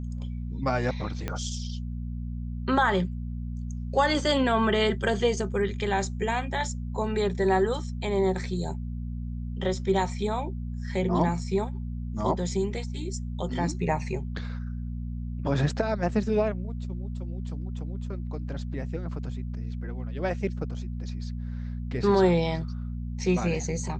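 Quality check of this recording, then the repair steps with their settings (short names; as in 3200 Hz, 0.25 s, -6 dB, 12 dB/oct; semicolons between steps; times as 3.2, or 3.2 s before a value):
hum 60 Hz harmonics 4 -33 dBFS
1.28 pop -16 dBFS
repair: de-click; de-hum 60 Hz, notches 4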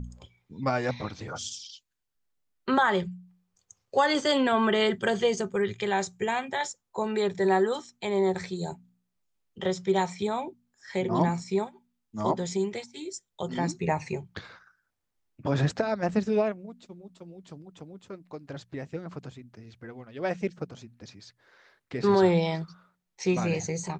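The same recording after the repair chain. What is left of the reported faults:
1.28 pop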